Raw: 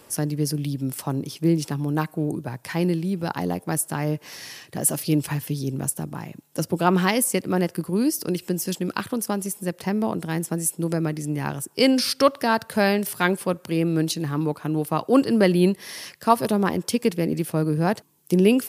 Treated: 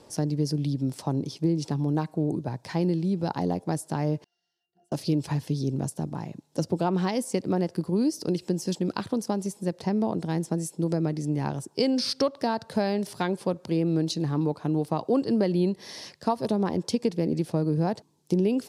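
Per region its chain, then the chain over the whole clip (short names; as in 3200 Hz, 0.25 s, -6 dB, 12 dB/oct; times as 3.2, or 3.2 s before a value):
4.24–4.92 differentiator + octave resonator F, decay 0.2 s
whole clip: compressor, threshold -20 dBFS; LPF 5500 Hz 12 dB/oct; band shelf 1900 Hz -8 dB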